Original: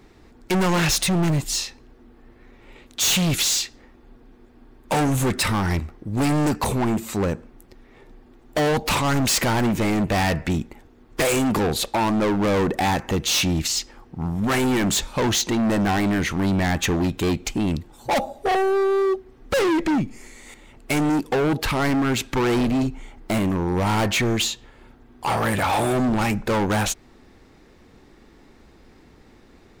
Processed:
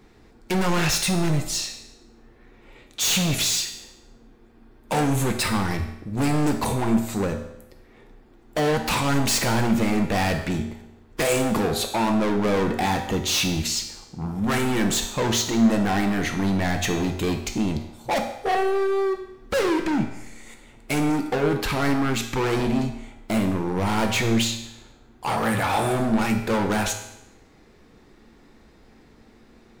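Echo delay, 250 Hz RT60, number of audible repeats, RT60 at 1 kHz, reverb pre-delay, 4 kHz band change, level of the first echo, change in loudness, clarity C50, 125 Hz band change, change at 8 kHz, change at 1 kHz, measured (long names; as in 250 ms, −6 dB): no echo audible, 0.85 s, no echo audible, 0.85 s, 3 ms, −1.5 dB, no echo audible, −1.5 dB, 8.0 dB, −2.0 dB, −1.5 dB, −1.5 dB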